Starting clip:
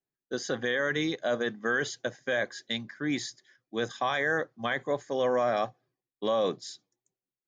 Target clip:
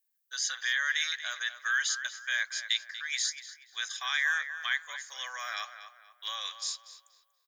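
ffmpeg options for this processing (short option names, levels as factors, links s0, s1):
-filter_complex "[0:a]highpass=f=1400:w=0.5412,highpass=f=1400:w=1.3066,aemphasis=mode=production:type=50fm,asplit=2[s0][s1];[s1]adelay=239,lowpass=f=2900:p=1,volume=0.316,asplit=2[s2][s3];[s3]adelay=239,lowpass=f=2900:p=1,volume=0.38,asplit=2[s4][s5];[s5]adelay=239,lowpass=f=2900:p=1,volume=0.38,asplit=2[s6][s7];[s7]adelay=239,lowpass=f=2900:p=1,volume=0.38[s8];[s0][s2][s4][s6][s8]amix=inputs=5:normalize=0,volume=1.26"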